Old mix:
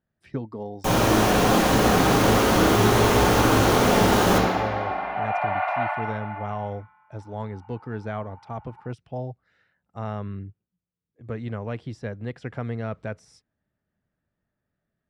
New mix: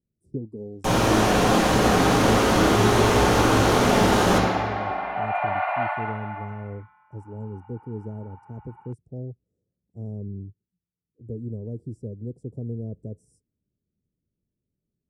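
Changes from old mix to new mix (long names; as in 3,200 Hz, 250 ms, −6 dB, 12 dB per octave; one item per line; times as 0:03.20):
speech: add Chebyshev band-stop filter 420–8,500 Hz, order 3
master: add low-pass filter 11,000 Hz 12 dB per octave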